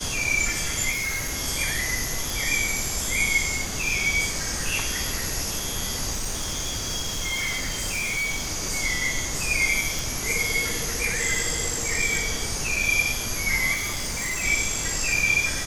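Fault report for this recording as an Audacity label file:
0.910000	1.330000	clipping −24 dBFS
2.300000	2.300000	click
6.120000	8.480000	clipping −23.5 dBFS
9.990000	9.990000	click
13.730000	14.440000	clipping −24.5 dBFS

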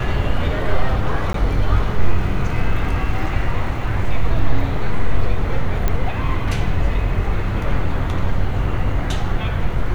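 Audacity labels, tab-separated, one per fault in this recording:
1.330000	1.340000	drop-out 13 ms
5.880000	5.880000	click −7 dBFS

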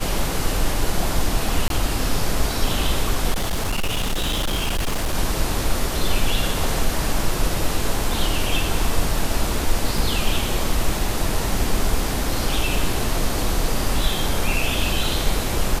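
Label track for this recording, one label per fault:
1.680000	1.700000	drop-out 22 ms
3.310000	5.150000	clipping −18 dBFS
9.980000	9.980000	drop-out 2.9 ms

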